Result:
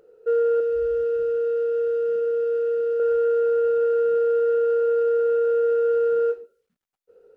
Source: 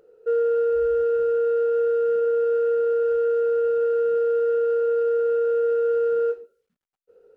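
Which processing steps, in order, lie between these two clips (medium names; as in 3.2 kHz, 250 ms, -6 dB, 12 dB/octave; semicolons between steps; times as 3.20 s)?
0.60–3.00 s: peaking EQ 990 Hz -14.5 dB 1 oct; trim +1 dB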